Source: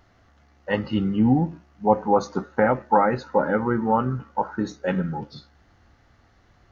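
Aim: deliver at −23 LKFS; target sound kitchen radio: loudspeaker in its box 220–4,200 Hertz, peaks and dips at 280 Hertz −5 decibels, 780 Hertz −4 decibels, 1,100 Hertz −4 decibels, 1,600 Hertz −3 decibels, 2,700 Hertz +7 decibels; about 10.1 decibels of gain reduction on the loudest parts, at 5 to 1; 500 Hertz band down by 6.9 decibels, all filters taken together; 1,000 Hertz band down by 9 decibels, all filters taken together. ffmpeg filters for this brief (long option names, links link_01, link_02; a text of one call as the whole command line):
ffmpeg -i in.wav -af "equalizer=frequency=500:width_type=o:gain=-5.5,equalizer=frequency=1000:width_type=o:gain=-5,acompressor=threshold=-27dB:ratio=5,highpass=220,equalizer=frequency=280:width_type=q:width=4:gain=-5,equalizer=frequency=780:width_type=q:width=4:gain=-4,equalizer=frequency=1100:width_type=q:width=4:gain=-4,equalizer=frequency=1600:width_type=q:width=4:gain=-3,equalizer=frequency=2700:width_type=q:width=4:gain=7,lowpass=frequency=4200:width=0.5412,lowpass=frequency=4200:width=1.3066,volume=13dB" out.wav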